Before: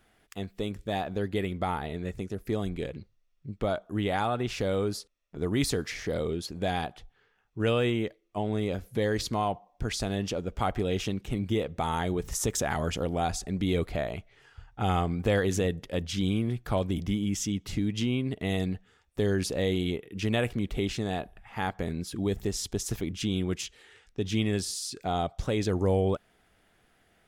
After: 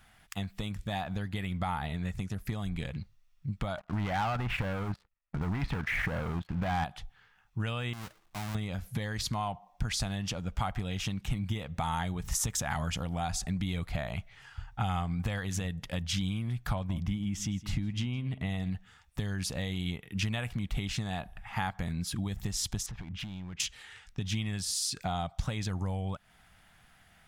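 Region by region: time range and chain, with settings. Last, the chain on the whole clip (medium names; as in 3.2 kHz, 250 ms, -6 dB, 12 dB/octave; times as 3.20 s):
3.78–6.84 s: low-pass 2.4 kHz 24 dB/octave + level held to a coarse grid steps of 11 dB + waveshaping leveller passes 3
7.93–8.55 s: square wave that keeps the level + compression 2.5:1, threshold -46 dBFS
16.73–18.70 s: treble shelf 3.1 kHz -8.5 dB + delay 161 ms -17.5 dB
22.86–23.60 s: low-pass 2.6 kHz + compression 5:1, threshold -40 dBFS + hard clipper -39.5 dBFS
whole clip: compression 6:1, threshold -33 dBFS; FFT filter 170 Hz 0 dB, 400 Hz -17 dB, 830 Hz -1 dB; trim +6.5 dB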